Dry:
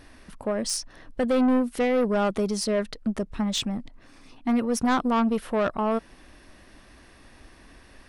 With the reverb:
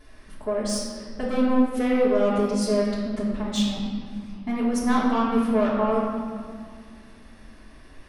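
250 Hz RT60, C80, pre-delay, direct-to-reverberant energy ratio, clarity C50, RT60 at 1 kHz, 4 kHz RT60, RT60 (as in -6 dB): 3.2 s, 2.5 dB, 3 ms, -7.5 dB, 0.5 dB, 2.0 s, 1.3 s, 2.1 s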